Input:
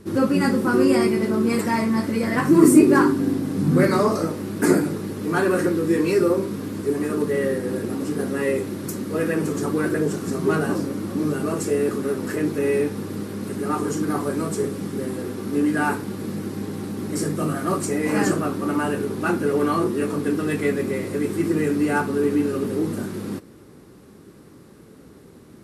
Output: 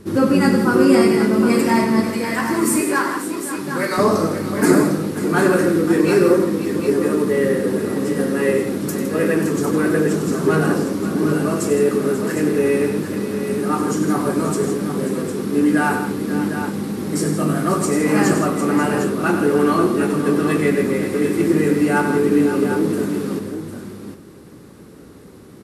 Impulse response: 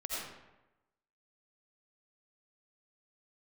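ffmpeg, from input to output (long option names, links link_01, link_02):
-filter_complex "[0:a]asettb=1/sr,asplit=3[link_01][link_02][link_03];[link_01]atrim=end=2.074[link_04];[link_02]atrim=start=2.07:end=3.98,asetpts=PTS-STARTPTS,afade=type=in:duration=0.004:curve=qsin,afade=type=out:start_time=1.906:duration=0.004:curve=qsin,highpass=frequency=1100:poles=1[link_05];[link_03]atrim=start=3.976[link_06];[link_04][link_05]acrossfade=duration=0.004:curve1=hsin:curve2=qsin[link_07];[link_07][link_06]acrossfade=duration=0.004:curve1=qsin:curve2=hsin,asplit=2[link_08][link_09];[link_09]aecho=0:1:96|161|536|754:0.355|0.299|0.251|0.376[link_10];[link_08][link_10]amix=inputs=2:normalize=0,volume=3.5dB"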